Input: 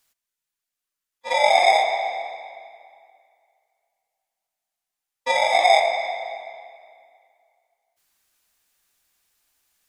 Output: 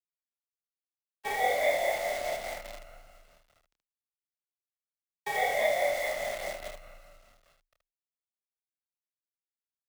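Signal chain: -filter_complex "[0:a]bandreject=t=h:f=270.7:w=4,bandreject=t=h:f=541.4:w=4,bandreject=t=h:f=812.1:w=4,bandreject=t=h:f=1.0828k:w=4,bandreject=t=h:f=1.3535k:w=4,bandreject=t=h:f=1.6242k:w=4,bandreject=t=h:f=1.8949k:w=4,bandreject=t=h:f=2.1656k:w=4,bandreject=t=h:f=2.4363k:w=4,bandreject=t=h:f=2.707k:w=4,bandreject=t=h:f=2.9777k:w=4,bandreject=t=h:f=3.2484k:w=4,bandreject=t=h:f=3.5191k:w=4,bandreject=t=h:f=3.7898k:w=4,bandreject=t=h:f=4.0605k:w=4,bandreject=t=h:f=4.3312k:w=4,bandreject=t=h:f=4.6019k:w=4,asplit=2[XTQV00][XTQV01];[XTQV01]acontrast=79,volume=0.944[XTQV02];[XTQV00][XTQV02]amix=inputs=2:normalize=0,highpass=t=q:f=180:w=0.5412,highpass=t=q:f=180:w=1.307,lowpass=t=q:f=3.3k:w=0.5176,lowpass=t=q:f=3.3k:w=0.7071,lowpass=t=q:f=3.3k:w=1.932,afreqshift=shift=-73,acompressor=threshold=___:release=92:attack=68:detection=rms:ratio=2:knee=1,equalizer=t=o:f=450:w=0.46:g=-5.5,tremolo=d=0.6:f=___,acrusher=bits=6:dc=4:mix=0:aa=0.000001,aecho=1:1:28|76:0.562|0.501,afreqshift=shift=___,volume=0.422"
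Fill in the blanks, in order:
0.0447, 4.8, -28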